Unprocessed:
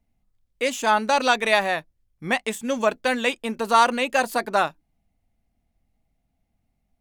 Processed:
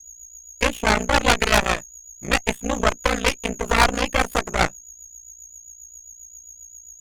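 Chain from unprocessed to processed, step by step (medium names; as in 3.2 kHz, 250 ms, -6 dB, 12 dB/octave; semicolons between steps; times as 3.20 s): high-order bell 5.6 kHz -12.5 dB 1.2 oct; whistle 6.7 kHz -38 dBFS; ring modulator 29 Hz; rotary cabinet horn 7.5 Hz; Chebyshev shaper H 5 -11 dB, 7 -17 dB, 8 -6 dB, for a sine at -7 dBFS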